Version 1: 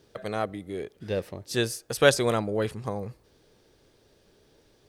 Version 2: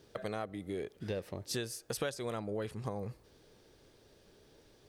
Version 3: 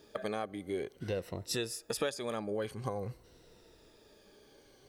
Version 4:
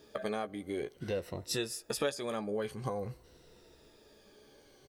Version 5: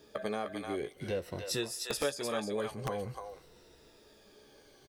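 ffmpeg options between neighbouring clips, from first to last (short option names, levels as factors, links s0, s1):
-af "acompressor=threshold=0.0224:ratio=8,volume=0.891"
-af "afftfilt=real='re*pow(10,9/40*sin(2*PI*(2*log(max(b,1)*sr/1024/100)/log(2)-(-0.49)*(pts-256)/sr)))':imag='im*pow(10,9/40*sin(2*PI*(2*log(max(b,1)*sr/1024/100)/log(2)-(-0.49)*(pts-256)/sr)))':win_size=1024:overlap=0.75,equalizer=f=110:w=0.94:g=-3.5,volume=1.19"
-filter_complex "[0:a]asplit=2[s0][s1];[s1]adelay=14,volume=0.355[s2];[s0][s2]amix=inputs=2:normalize=0"
-filter_complex "[0:a]acrossover=split=490[s0][s1];[s0]aeval=exprs='(mod(23.7*val(0)+1,2)-1)/23.7':c=same[s2];[s1]aecho=1:1:304:0.668[s3];[s2][s3]amix=inputs=2:normalize=0"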